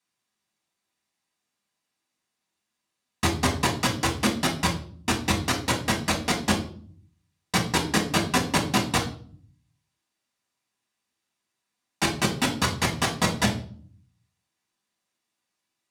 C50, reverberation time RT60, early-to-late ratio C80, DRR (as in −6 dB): 10.5 dB, 0.50 s, 15.0 dB, −1.5 dB